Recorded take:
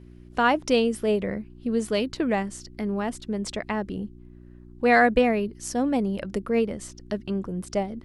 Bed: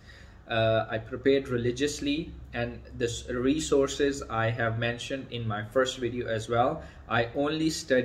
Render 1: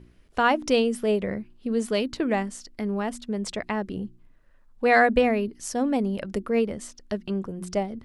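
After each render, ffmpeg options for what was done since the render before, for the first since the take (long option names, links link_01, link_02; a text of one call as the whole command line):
ffmpeg -i in.wav -af "bandreject=frequency=60:width_type=h:width=4,bandreject=frequency=120:width_type=h:width=4,bandreject=frequency=180:width_type=h:width=4,bandreject=frequency=240:width_type=h:width=4,bandreject=frequency=300:width_type=h:width=4,bandreject=frequency=360:width_type=h:width=4" out.wav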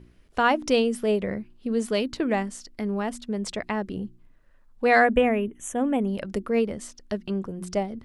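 ffmpeg -i in.wav -filter_complex "[0:a]asettb=1/sr,asplit=3[link_01][link_02][link_03];[link_01]atrim=end=5.044[link_04];[link_02]atrim=start=5.04:end=6.08,asetpts=PTS-STARTPTS,afade=type=in:duration=0.004:curve=qsin,afade=type=out:start_time=1.036:duration=0.004:curve=qsin,asuperstop=centerf=4700:order=8:qfactor=1.7[link_05];[link_03]atrim=start=6.076[link_06];[link_04][link_05]acrossfade=duration=0.004:curve1=hsin:curve2=qsin[link_07];[link_07][link_06]acrossfade=duration=0.004:curve1=qsin:curve2=hsin" out.wav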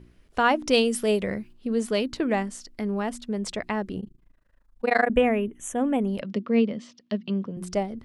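ffmpeg -i in.wav -filter_complex "[0:a]asettb=1/sr,asplit=3[link_01][link_02][link_03];[link_01]atrim=end=0.734[link_04];[link_02]atrim=start=0.73:end=1.53,asetpts=PTS-STARTPTS,afade=type=in:duration=0.004:curve=qsin,afade=type=out:start_time=0.796:duration=0.004:curve=qsin,highshelf=frequency=2900:gain=9.5[link_05];[link_03]atrim=start=1.526[link_06];[link_04][link_05]acrossfade=duration=0.004:curve1=hsin:curve2=qsin[link_07];[link_07][link_06]acrossfade=duration=0.004:curve1=qsin:curve2=hsin,asettb=1/sr,asplit=3[link_08][link_09][link_10];[link_08]atrim=end=4.004[link_11];[link_09]atrim=start=4:end=5.1,asetpts=PTS-STARTPTS,afade=type=in:duration=0.004:curve=qsin,afade=type=out:start_time=1.096:duration=0.004:curve=qsin,tremolo=f=26:d=0.974[link_12];[link_10]atrim=start=5.096[link_13];[link_11][link_12]acrossfade=duration=0.004:curve1=hsin:curve2=qsin[link_14];[link_14][link_13]acrossfade=duration=0.004:curve1=qsin:curve2=hsin,asettb=1/sr,asplit=3[link_15][link_16][link_17];[link_15]atrim=end=6.214[link_18];[link_16]atrim=start=6.21:end=7.57,asetpts=PTS-STARTPTS,afade=type=in:duration=0.004:curve=qsin,afade=type=out:start_time=1.356:duration=0.004:curve=qsin,highpass=frequency=130:width=0.5412,highpass=frequency=130:width=1.3066,equalizer=frequency=230:width_type=q:width=4:gain=6,equalizer=frequency=350:width_type=q:width=4:gain=-6,equalizer=frequency=800:width_type=q:width=4:gain=-7,equalizer=frequency=1500:width_type=q:width=4:gain=-7,equalizer=frequency=3100:width_type=q:width=4:gain=4,lowpass=frequency=5000:width=0.5412,lowpass=frequency=5000:width=1.3066[link_19];[link_17]atrim=start=7.566[link_20];[link_18][link_19]acrossfade=duration=0.004:curve1=hsin:curve2=qsin[link_21];[link_21][link_20]acrossfade=duration=0.004:curve1=qsin:curve2=hsin" out.wav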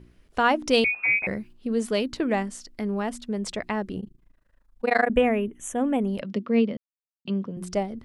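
ffmpeg -i in.wav -filter_complex "[0:a]asettb=1/sr,asplit=3[link_01][link_02][link_03];[link_01]atrim=end=0.844[link_04];[link_02]atrim=start=0.84:end=1.27,asetpts=PTS-STARTPTS,afade=type=in:duration=0.004:curve=qsin,afade=type=out:start_time=0.426:duration=0.004:curve=qsin,lowpass=frequency=2300:width_type=q:width=0.5098,lowpass=frequency=2300:width_type=q:width=0.6013,lowpass=frequency=2300:width_type=q:width=0.9,lowpass=frequency=2300:width_type=q:width=2.563,afreqshift=-2700[link_05];[link_03]atrim=start=1.266[link_06];[link_04][link_05]acrossfade=duration=0.004:curve1=hsin:curve2=qsin[link_07];[link_07][link_06]acrossfade=duration=0.004:curve1=qsin:curve2=hsin,asplit=3[link_08][link_09][link_10];[link_08]atrim=end=6.77,asetpts=PTS-STARTPTS,afade=type=out:start_time=6.766:duration=0.004:curve=hsin[link_11];[link_09]atrim=start=6.77:end=7.25,asetpts=PTS-STARTPTS,volume=0[link_12];[link_10]atrim=start=7.25,asetpts=PTS-STARTPTS,afade=type=in:duration=0.004:curve=hsin[link_13];[link_11][link_12][link_13]concat=n=3:v=0:a=1" out.wav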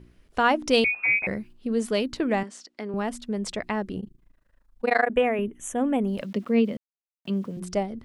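ffmpeg -i in.wav -filter_complex "[0:a]asettb=1/sr,asplit=3[link_01][link_02][link_03];[link_01]atrim=end=2.434[link_04];[link_02]atrim=start=2.43:end=2.94,asetpts=PTS-STARTPTS,afade=type=in:duration=0.004:curve=qsin,afade=type=out:start_time=0.506:duration=0.004:curve=qsin,highpass=320,lowpass=6600[link_05];[link_03]atrim=start=2.936[link_06];[link_04][link_05]acrossfade=duration=0.004:curve1=hsin:curve2=qsin[link_07];[link_07][link_06]acrossfade=duration=0.004:curve1=qsin:curve2=hsin,asettb=1/sr,asplit=3[link_08][link_09][link_10];[link_08]atrim=end=4.954[link_11];[link_09]atrim=start=4.95:end=5.39,asetpts=PTS-STARTPTS,afade=type=in:duration=0.004:curve=qsin,afade=type=out:start_time=0.436:duration=0.004:curve=qsin,bass=frequency=250:gain=-11,treble=frequency=4000:gain=-3[link_12];[link_10]atrim=start=5.386[link_13];[link_11][link_12]acrossfade=duration=0.004:curve1=hsin:curve2=qsin[link_14];[link_14][link_13]acrossfade=duration=0.004:curve1=qsin:curve2=hsin,asettb=1/sr,asplit=3[link_15][link_16][link_17];[link_15]atrim=end=6.044[link_18];[link_16]atrim=start=6.04:end=7.6,asetpts=PTS-STARTPTS,afade=type=in:duration=0.004:curve=qsin,afade=type=out:start_time=1.556:duration=0.004:curve=qsin,aeval=exprs='val(0)*gte(abs(val(0)),0.00316)':channel_layout=same[link_19];[link_17]atrim=start=7.596[link_20];[link_18][link_19]acrossfade=duration=0.004:curve1=hsin:curve2=qsin[link_21];[link_21][link_20]acrossfade=duration=0.004:curve1=qsin:curve2=hsin" out.wav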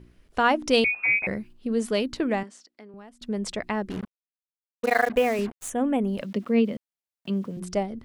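ffmpeg -i in.wav -filter_complex "[0:a]asettb=1/sr,asplit=3[link_01][link_02][link_03];[link_01]atrim=end=3.904[link_04];[link_02]atrim=start=3.9:end=5.7,asetpts=PTS-STARTPTS,afade=type=in:duration=0.004:curve=qsin,afade=type=out:start_time=1.796:duration=0.004:curve=qsin,acrusher=bits=5:mix=0:aa=0.5[link_05];[link_03]atrim=start=5.696[link_06];[link_04][link_05]acrossfade=duration=0.004:curve1=hsin:curve2=qsin[link_07];[link_07][link_06]acrossfade=duration=0.004:curve1=qsin:curve2=hsin,asplit=2[link_08][link_09];[link_08]atrim=end=3.21,asetpts=PTS-STARTPTS,afade=type=out:start_time=2.26:duration=0.95:curve=qua:silence=0.1[link_10];[link_09]atrim=start=3.21,asetpts=PTS-STARTPTS,afade=type=in:duration=0.004:curve=hsin:silence=0.1[link_11];[link_10][link_11]concat=n=2:v=0:a=1" out.wav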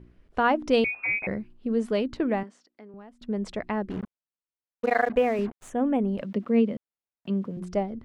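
ffmpeg -i in.wav -af "lowpass=frequency=1600:poles=1" out.wav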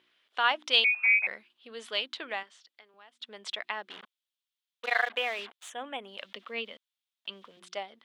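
ffmpeg -i in.wav -af "highpass=1100,equalizer=frequency=3400:width_type=o:width=0.71:gain=14.5" out.wav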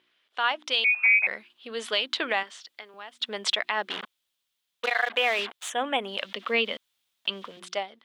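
ffmpeg -i in.wav -af "dynaudnorm=framelen=390:gausssize=5:maxgain=14dB,alimiter=limit=-13dB:level=0:latency=1:release=131" out.wav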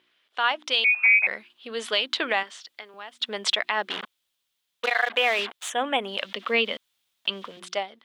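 ffmpeg -i in.wav -af "volume=2dB" out.wav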